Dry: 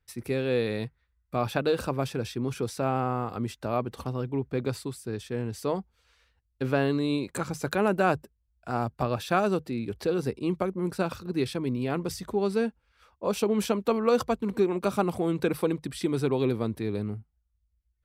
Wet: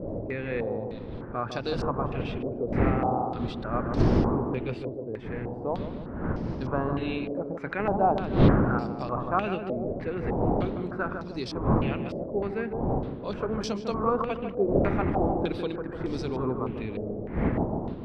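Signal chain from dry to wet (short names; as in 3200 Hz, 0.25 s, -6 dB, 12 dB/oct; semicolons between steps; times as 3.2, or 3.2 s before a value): wind noise 280 Hz -25 dBFS; tape echo 0.151 s, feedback 69%, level -4 dB, low-pass 1100 Hz; stepped low-pass 3.3 Hz 590–5200 Hz; gain -6.5 dB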